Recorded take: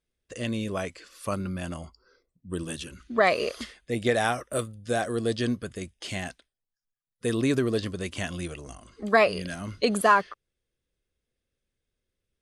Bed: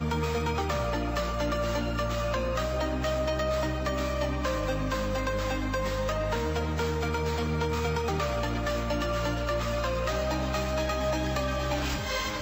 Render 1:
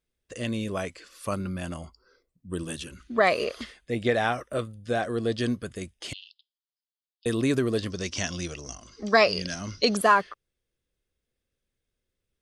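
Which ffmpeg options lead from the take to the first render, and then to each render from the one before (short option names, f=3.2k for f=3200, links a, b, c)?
-filter_complex "[0:a]asettb=1/sr,asplit=3[a][b][c];[a]atrim=end=3.444[d];[b]atrim=start=3.44:end=5.38,asetpts=PTS-STARTPTS,afade=t=in:d=0.004:c=qsin,afade=t=out:st=1.936:d=0.004:c=qsin,acrossover=split=5000[e][f];[f]acompressor=threshold=-54dB:ratio=4:attack=1:release=60[g];[e][g]amix=inputs=2:normalize=0[h];[c]atrim=start=5.376[i];[d][h]acrossfade=d=0.004:c1=hsin:c2=qsin[j];[j][i]acrossfade=d=0.004:c1=qsin:c2=hsin,asettb=1/sr,asplit=3[k][l][m];[k]atrim=end=6.134[n];[l]atrim=start=6.13:end=7.26,asetpts=PTS-STARTPTS,afade=t=in:d=0.004:c=qsin,afade=t=out:st=1.126:d=0.004:c=qsin,asuperpass=centerf=3800:order=12:qfactor=1.7[o];[m]atrim=start=7.256[p];[n][o]acrossfade=d=0.004:c1=hsin:c2=qsin[q];[q][p]acrossfade=d=0.004:c1=qsin:c2=hsin,asettb=1/sr,asplit=3[r][s][t];[r]atrim=end=7.904[u];[s]atrim=start=7.9:end=9.97,asetpts=PTS-STARTPTS,afade=t=in:d=0.004:c=qsin,afade=t=out:st=2.066:d=0.004:c=qsin,lowpass=f=5.6k:t=q:w=13[v];[t]atrim=start=9.966[w];[u][v]acrossfade=d=0.004:c1=hsin:c2=qsin[x];[x][w]acrossfade=d=0.004:c1=qsin:c2=hsin"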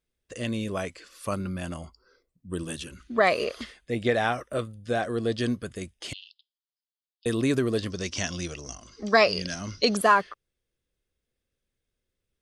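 -af anull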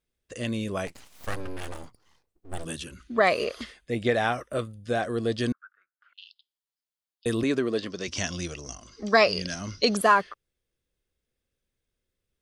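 -filter_complex "[0:a]asplit=3[a][b][c];[a]afade=t=out:st=0.86:d=0.02[d];[b]aeval=exprs='abs(val(0))':c=same,afade=t=in:st=0.86:d=0.02,afade=t=out:st=2.64:d=0.02[e];[c]afade=t=in:st=2.64:d=0.02[f];[d][e][f]amix=inputs=3:normalize=0,asettb=1/sr,asplit=3[g][h][i];[g]atrim=end=5.524[j];[h]atrim=start=5.52:end=6.18,asetpts=PTS-STARTPTS,afade=t=in:d=0.004:c=qsin,afade=t=out:st=0.656:d=0.004:c=qsin,asuperpass=centerf=1400:order=4:qfactor=5.1[k];[i]atrim=start=6.176[l];[j][k]acrossfade=d=0.004:c1=hsin:c2=qsin[m];[m][l]acrossfade=d=0.004:c1=qsin:c2=hsin,asettb=1/sr,asplit=3[n][o][p];[n]atrim=end=7.434[q];[o]atrim=start=7.43:end=8.08,asetpts=PTS-STARTPTS,afade=t=in:d=0.004:c=qsin,afade=t=out:st=0.646:d=0.004:c=qsin,highpass=210,lowpass=5.7k[r];[p]atrim=start=8.076[s];[q][r]acrossfade=d=0.004:c1=hsin:c2=qsin[t];[t][s]acrossfade=d=0.004:c1=qsin:c2=hsin"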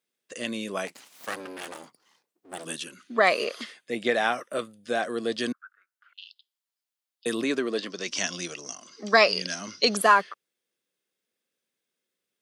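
-af "highpass=f=180:w=0.5412,highpass=f=180:w=1.3066,tiltshelf=f=680:g=-3"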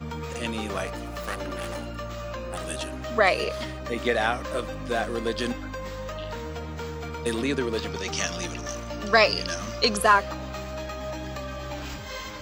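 -filter_complex "[1:a]volume=-5.5dB[a];[0:a][a]amix=inputs=2:normalize=0"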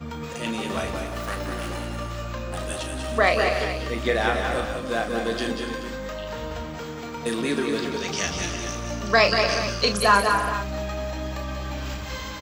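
-filter_complex "[0:a]asplit=2[a][b];[b]adelay=35,volume=-8dB[c];[a][c]amix=inputs=2:normalize=0,aecho=1:1:185|199|292|353|429:0.398|0.398|0.237|0.188|0.237"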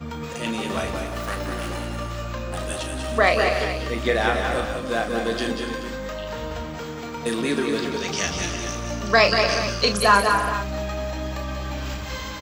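-af "volume=1.5dB"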